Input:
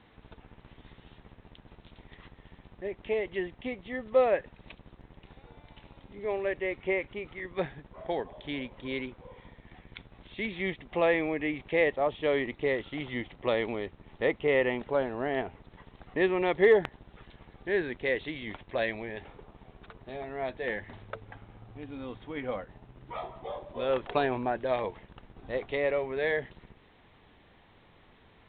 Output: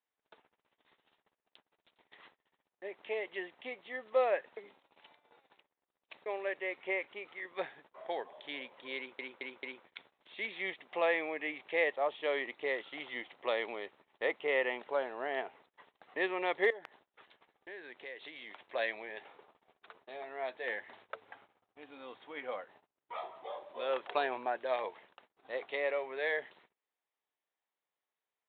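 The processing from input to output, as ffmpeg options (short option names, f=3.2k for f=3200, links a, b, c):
-filter_complex "[0:a]asettb=1/sr,asplit=3[a][b][c];[a]atrim=end=16.704[d];[b]atrim=start=16.7:end=18.63,asetpts=PTS-STARTPTS,afade=t=in:d=0.004:c=qsin,afade=t=out:st=1.926:d=0.004:c=qsin,acompressor=threshold=-39dB:ratio=4:attack=3.2:release=140:knee=1:detection=peak[e];[c]atrim=start=18.626[f];[d][e]acrossfade=d=0.004:c1=hsin:c2=qsin[g];[g][f]acrossfade=d=0.004:c1=qsin:c2=hsin,asplit=7[h][i][j][k][l][m][n];[h]atrim=end=4.572[o];[i]atrim=start=4.568:end=6.262,asetpts=PTS-STARTPTS,areverse[p];[j]atrim=start=6.258:end=9.192[q];[k]atrim=start=8.968:end=9.192[r];[l]atrim=start=8.968:end=9.192[s];[m]atrim=start=8.968:end=9.192[t];[n]atrim=start=9.848[u];[o][p]acrossfade=d=0.004:c1=hsin:c2=hsin[v];[v][q]acrossfade=d=0.004:c1=hsin:c2=hsin[w];[w][r]acrossfade=d=0.004:c1=hsin:c2=hsin[x];[x][s]acrossfade=d=0.004:c1=hsin:c2=hsin[y];[y][t]acrossfade=d=0.004:c1=hsin:c2=hsin[z];[z][u]acrossfade=d=0.004:c1=hsin:c2=hsin,highpass=550,agate=range=-29dB:threshold=-57dB:ratio=16:detection=peak,volume=-2.5dB"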